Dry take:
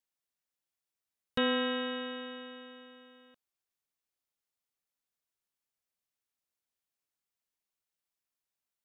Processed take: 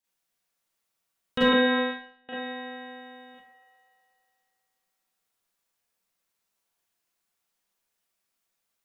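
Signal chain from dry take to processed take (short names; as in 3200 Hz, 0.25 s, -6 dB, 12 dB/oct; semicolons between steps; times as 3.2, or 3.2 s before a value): band-limited delay 0.122 s, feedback 72%, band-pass 980 Hz, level -5.5 dB; 1.48–2.29 gate -32 dBFS, range -35 dB; Schroeder reverb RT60 0.41 s, combs from 33 ms, DRR -7.5 dB; gain +1.5 dB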